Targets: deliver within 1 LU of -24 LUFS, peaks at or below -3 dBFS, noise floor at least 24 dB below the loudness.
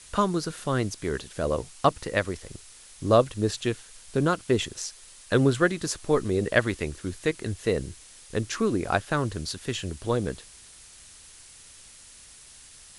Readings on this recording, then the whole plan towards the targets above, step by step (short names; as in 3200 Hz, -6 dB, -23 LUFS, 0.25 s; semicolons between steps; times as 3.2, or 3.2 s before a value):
noise floor -50 dBFS; noise floor target -51 dBFS; loudness -27.0 LUFS; peak -4.5 dBFS; loudness target -24.0 LUFS
-> noise print and reduce 6 dB; gain +3 dB; limiter -3 dBFS